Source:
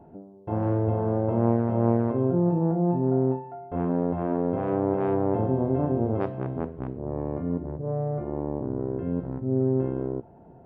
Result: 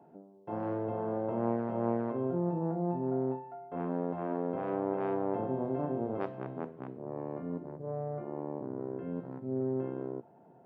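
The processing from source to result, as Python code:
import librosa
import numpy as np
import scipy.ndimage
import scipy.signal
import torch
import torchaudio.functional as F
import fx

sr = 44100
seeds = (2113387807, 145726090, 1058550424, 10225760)

y = scipy.signal.sosfilt(scipy.signal.butter(4, 130.0, 'highpass', fs=sr, output='sos'), x)
y = fx.low_shelf(y, sr, hz=490.0, db=-7.0)
y = y * librosa.db_to_amplitude(-3.5)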